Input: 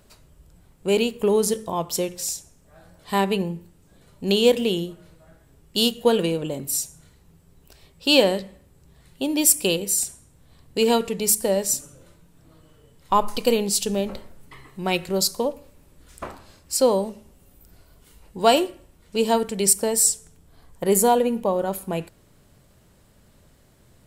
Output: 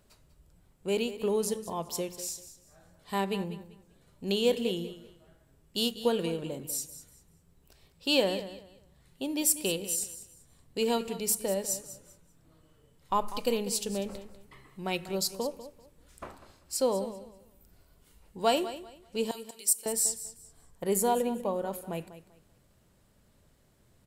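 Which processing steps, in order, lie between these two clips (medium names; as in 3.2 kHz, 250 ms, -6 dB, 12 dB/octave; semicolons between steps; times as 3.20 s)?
19.31–19.86 s: differentiator; on a send: feedback delay 195 ms, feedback 24%, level -14 dB; on the sum: trim -9 dB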